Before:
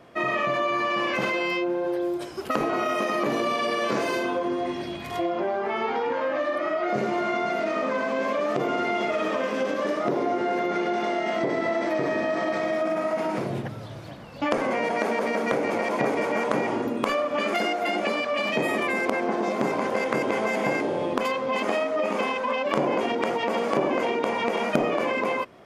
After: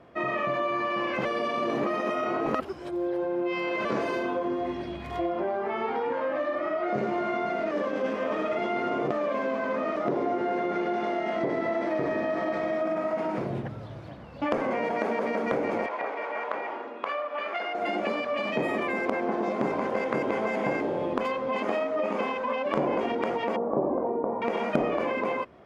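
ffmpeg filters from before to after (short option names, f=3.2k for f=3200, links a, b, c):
-filter_complex "[0:a]asettb=1/sr,asplit=3[a][b][c];[a]atrim=end=15.864[d];[b]atrim=start=15.86:end=17.75,asetpts=PTS-STARTPTS,afade=t=in:d=0.004:c=qsin,afade=t=out:st=1.886:d=0.004:c=qsin,highpass=700,lowpass=3.5k[e];[c]atrim=start=17.746[f];[d][e]acrossfade=d=0.004:c1=hsin:c2=qsin[g];[g][f]acrossfade=d=0.004:c1=qsin:c2=hsin,asettb=1/sr,asplit=3[h][i][j];[h]atrim=end=23.564[k];[i]atrim=start=23.56:end=24.42,asetpts=PTS-STARTPTS,afade=t=in:d=0.004:c=qsin,afade=t=out:st=0.856:d=0.004:c=qsin,lowpass=f=1k:w=0.5412,lowpass=f=1k:w=1.3066[l];[j]atrim=start=24.416[m];[k][l]acrossfade=d=0.004:c1=hsin:c2=qsin[n];[n][m]acrossfade=d=0.004:c1=qsin:c2=hsin,asplit=5[o][p][q][r][s];[o]atrim=end=1.252[t];[p]atrim=start=1.248:end=3.852,asetpts=PTS-STARTPTS,areverse[u];[q]atrim=start=3.848:end=7.712[v];[r]atrim=start=7.708:end=9.962,asetpts=PTS-STARTPTS,areverse[w];[s]atrim=start=9.958[x];[t][u]acrossfade=d=0.004:c1=hsin:c2=hsin[y];[y][v]acrossfade=d=0.004:c1=hsin:c2=hsin[z];[z][w]acrossfade=d=0.004:c1=hsin:c2=hsin[aa];[aa][x]acrossfade=d=0.004:c1=hsin:c2=hsin,lowpass=f=2k:p=1,equalizer=f=66:w=5.1:g=11.5,volume=-2dB"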